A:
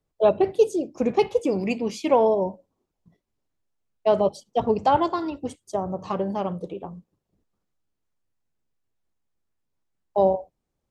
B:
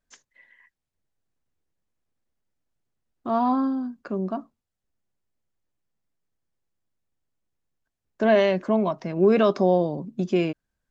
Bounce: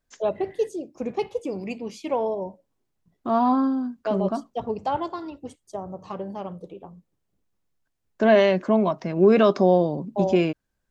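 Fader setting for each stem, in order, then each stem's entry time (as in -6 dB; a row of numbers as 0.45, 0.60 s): -6.5, +2.0 dB; 0.00, 0.00 s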